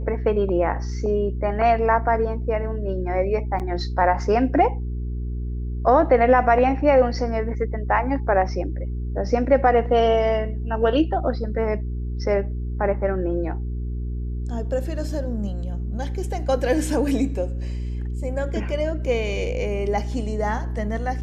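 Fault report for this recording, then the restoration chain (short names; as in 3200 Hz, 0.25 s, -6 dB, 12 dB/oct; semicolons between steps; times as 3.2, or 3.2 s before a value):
hum 60 Hz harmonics 7 -27 dBFS
3.59–3.6 gap 7.9 ms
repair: de-hum 60 Hz, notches 7; interpolate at 3.59, 7.9 ms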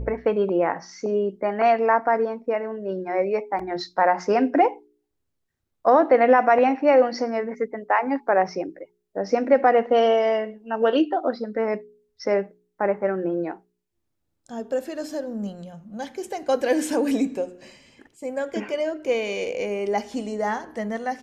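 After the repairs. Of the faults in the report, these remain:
none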